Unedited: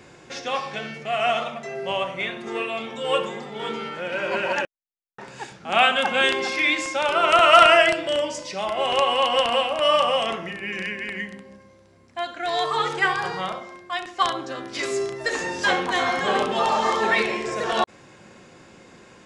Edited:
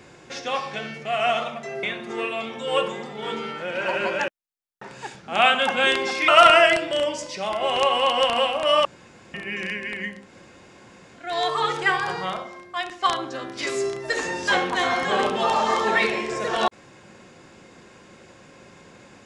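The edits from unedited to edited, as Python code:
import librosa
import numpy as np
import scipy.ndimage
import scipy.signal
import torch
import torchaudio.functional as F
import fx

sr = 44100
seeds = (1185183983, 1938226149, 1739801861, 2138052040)

y = fx.edit(x, sr, fx.cut(start_s=1.83, length_s=0.37),
    fx.reverse_span(start_s=4.22, length_s=0.34),
    fx.cut(start_s=6.65, length_s=0.79),
    fx.room_tone_fill(start_s=10.01, length_s=0.49),
    fx.room_tone_fill(start_s=11.38, length_s=1.03, crossfade_s=0.24), tone=tone)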